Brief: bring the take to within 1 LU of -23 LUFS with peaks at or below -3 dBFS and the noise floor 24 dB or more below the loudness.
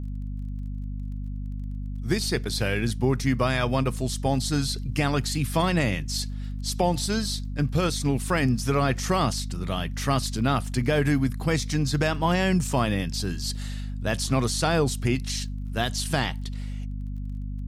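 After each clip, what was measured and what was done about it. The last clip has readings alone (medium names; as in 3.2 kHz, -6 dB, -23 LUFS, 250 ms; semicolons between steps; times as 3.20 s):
tick rate 22 per s; hum 50 Hz; highest harmonic 250 Hz; hum level -29 dBFS; loudness -26.5 LUFS; peak level -10.0 dBFS; loudness target -23.0 LUFS
-> de-click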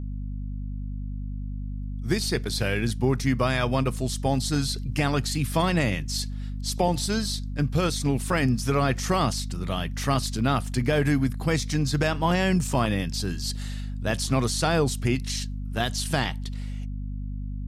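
tick rate 0 per s; hum 50 Hz; highest harmonic 250 Hz; hum level -29 dBFS
-> hum notches 50/100/150/200/250 Hz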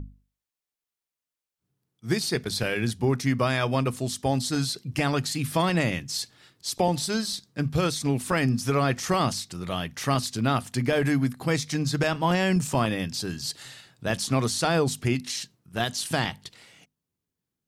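hum not found; loudness -26.5 LUFS; peak level -10.0 dBFS; loudness target -23.0 LUFS
-> trim +3.5 dB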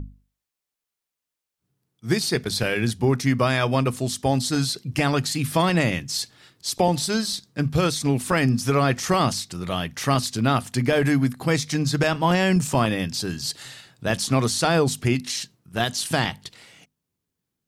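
loudness -23.0 LUFS; peak level -6.5 dBFS; noise floor -86 dBFS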